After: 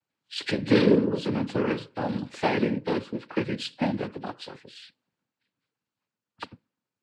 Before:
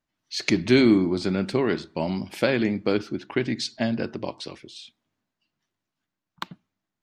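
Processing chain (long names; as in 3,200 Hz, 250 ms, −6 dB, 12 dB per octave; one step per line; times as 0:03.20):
hearing-aid frequency compression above 2,100 Hz 1.5 to 1
cochlear-implant simulation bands 8
level −2 dB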